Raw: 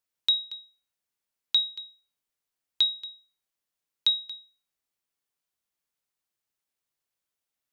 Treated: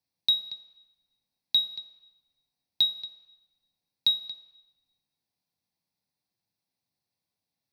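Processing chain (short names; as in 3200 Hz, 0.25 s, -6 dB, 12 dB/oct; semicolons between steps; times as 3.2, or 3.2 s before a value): soft clip -15.5 dBFS, distortion -20 dB; reverb RT60 1.0 s, pre-delay 3 ms, DRR 6 dB; gain -5.5 dB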